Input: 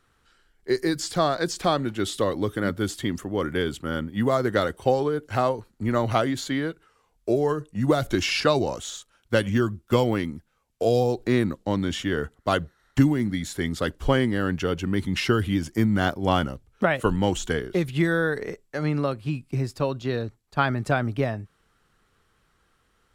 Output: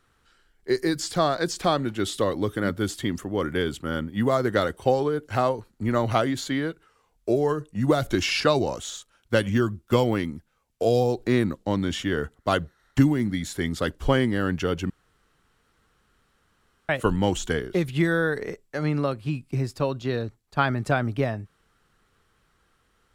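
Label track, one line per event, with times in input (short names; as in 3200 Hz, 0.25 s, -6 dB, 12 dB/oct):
14.900000	16.890000	room tone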